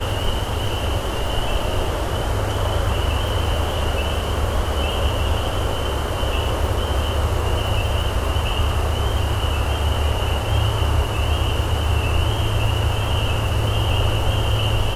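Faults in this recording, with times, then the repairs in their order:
crackle 38 per s -28 dBFS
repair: de-click

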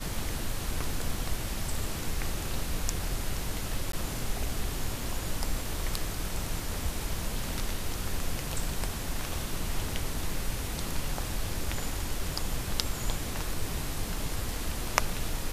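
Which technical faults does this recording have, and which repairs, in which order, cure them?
3.92–3.93 s: dropout 13 ms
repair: interpolate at 3.92 s, 13 ms

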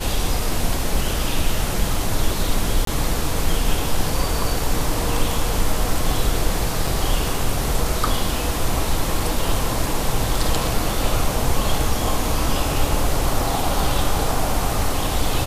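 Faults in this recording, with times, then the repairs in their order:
2.85–2.87 s: dropout 23 ms
6.87 s: dropout 4.5 ms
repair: interpolate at 2.85 s, 23 ms; interpolate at 6.87 s, 4.5 ms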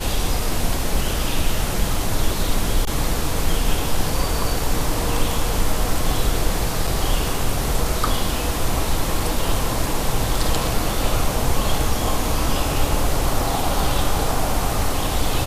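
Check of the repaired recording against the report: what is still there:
nothing left

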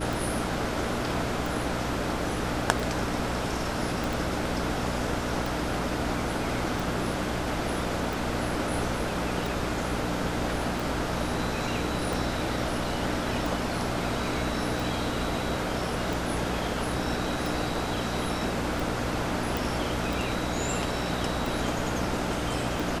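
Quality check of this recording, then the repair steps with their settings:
hum 60 Hz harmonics 5 -34 dBFS
tick 45 rpm
4.04 s: pop
19.57 s: pop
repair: de-click; de-hum 60 Hz, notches 5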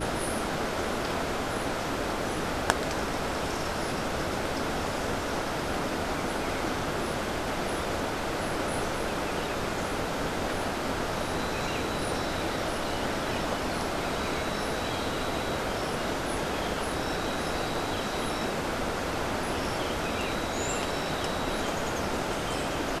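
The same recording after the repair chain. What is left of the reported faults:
4.04 s: pop

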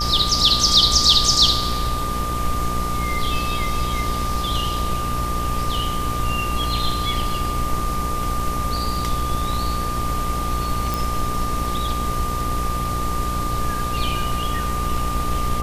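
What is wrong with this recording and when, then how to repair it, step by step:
buzz 60 Hz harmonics 19 -27 dBFS
whine 1.2 kHz -25 dBFS
10.94 s: pop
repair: de-click; de-hum 60 Hz, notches 19; band-stop 1.2 kHz, Q 30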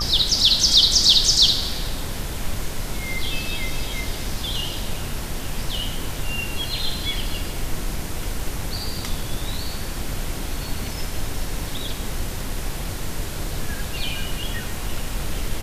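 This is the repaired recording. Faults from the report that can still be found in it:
nothing left

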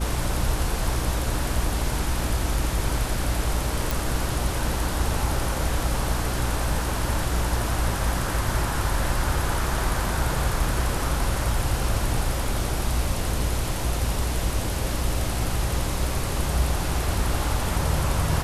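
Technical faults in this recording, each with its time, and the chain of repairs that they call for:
hum 60 Hz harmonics 6 -29 dBFS
3.91 s: pop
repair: de-click; de-hum 60 Hz, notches 6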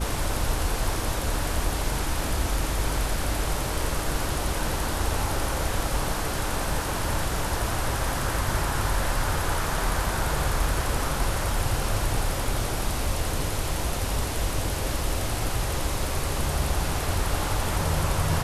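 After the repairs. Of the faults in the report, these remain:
nothing left

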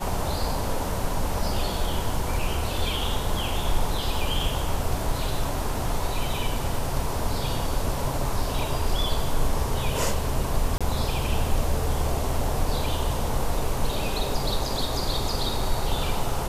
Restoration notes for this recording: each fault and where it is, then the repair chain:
10.78–10.81 s: dropout 26 ms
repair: interpolate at 10.78 s, 26 ms

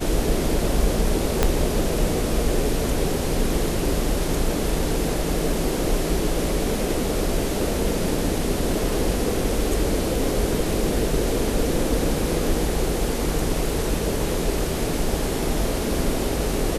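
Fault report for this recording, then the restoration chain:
1.43 s: pop -3 dBFS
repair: de-click

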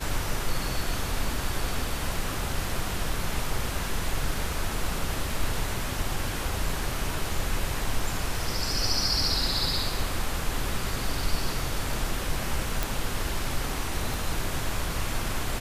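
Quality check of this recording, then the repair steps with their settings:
12.83 s: pop
14.14 s: pop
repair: de-click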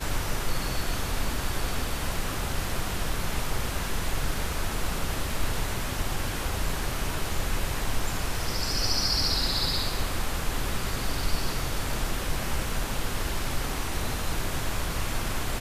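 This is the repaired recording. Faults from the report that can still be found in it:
14.14 s: pop

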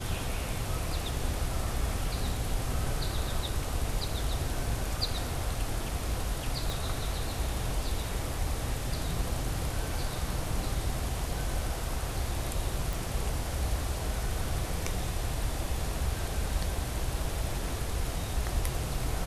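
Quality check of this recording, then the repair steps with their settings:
6.70 s: pop
12.93 s: pop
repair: de-click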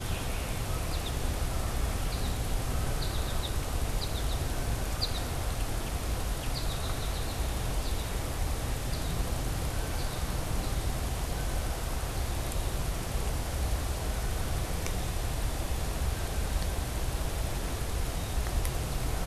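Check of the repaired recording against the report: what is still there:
6.70 s: pop

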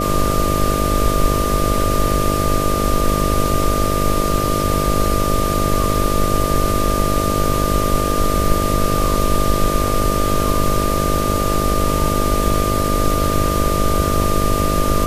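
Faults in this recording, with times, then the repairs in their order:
buzz 50 Hz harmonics 13 -21 dBFS
whine 1.2 kHz -21 dBFS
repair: de-hum 50 Hz, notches 13; band-stop 1.2 kHz, Q 30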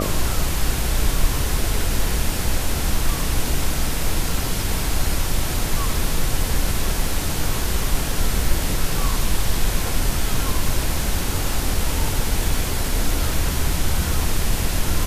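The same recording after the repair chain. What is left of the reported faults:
nothing left

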